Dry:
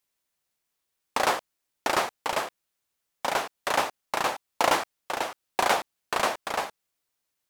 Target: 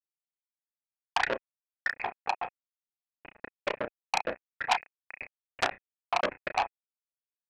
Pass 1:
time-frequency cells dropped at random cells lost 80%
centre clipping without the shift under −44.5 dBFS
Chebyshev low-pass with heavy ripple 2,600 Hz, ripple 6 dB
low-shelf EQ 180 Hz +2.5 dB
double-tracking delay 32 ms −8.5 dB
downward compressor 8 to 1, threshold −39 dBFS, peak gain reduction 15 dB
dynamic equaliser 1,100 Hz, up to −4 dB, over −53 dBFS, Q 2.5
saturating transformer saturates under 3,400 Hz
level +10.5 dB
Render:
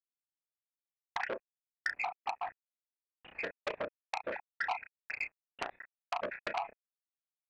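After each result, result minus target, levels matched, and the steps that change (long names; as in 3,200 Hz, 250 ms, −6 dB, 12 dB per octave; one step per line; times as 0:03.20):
downward compressor: peak gain reduction +15 dB; centre clipping without the shift: distortion −12 dB
remove: downward compressor 8 to 1, threshold −39 dBFS, peak gain reduction 15 dB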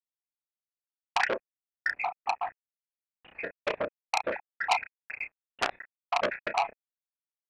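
centre clipping without the shift: distortion −12 dB
change: centre clipping without the shift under −33 dBFS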